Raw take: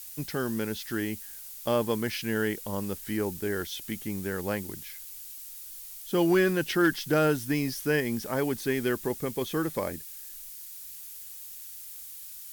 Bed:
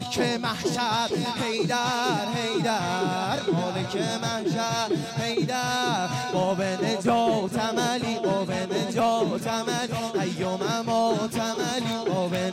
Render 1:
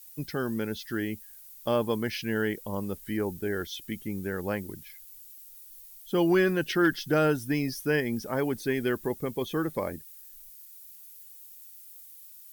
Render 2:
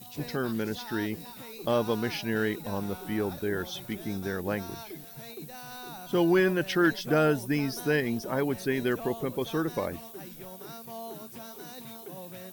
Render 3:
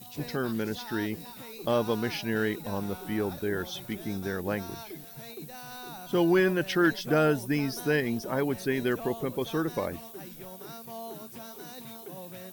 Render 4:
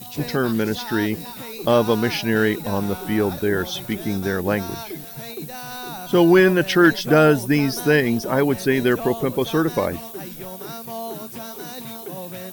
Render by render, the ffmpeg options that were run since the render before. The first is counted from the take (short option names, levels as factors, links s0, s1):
-af "afftdn=nr=11:nf=-44"
-filter_complex "[1:a]volume=0.126[s0];[0:a][s0]amix=inputs=2:normalize=0"
-af anull
-af "volume=2.99"